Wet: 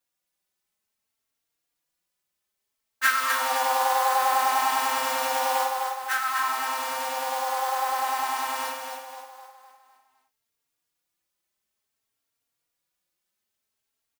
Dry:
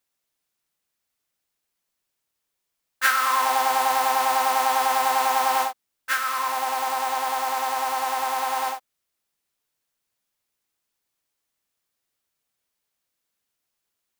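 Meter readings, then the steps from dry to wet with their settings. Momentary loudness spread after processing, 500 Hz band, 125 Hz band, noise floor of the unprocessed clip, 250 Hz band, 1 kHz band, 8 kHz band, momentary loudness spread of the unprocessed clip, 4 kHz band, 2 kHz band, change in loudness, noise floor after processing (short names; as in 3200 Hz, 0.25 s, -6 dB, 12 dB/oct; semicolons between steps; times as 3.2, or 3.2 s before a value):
8 LU, -0.5 dB, n/a, -81 dBFS, -3.0 dB, -2.5 dB, -1.5 dB, 5 LU, -1.5 dB, -1.0 dB, -2.0 dB, -82 dBFS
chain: feedback echo 0.254 s, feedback 46%, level -5 dB; endless flanger 3.7 ms +0.55 Hz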